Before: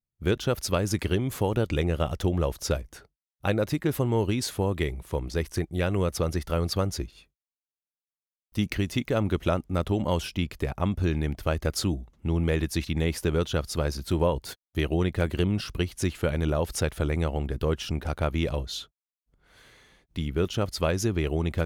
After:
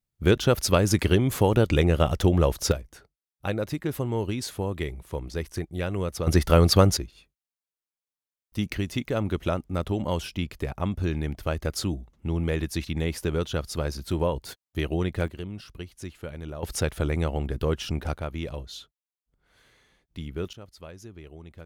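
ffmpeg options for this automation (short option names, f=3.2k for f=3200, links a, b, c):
-af "asetnsamples=n=441:p=0,asendcmd='2.72 volume volume -3dB;6.27 volume volume 9dB;6.97 volume volume -1.5dB;15.28 volume volume -11dB;16.63 volume volume 0.5dB;18.17 volume volume -6dB;20.53 volume volume -18dB',volume=5dB"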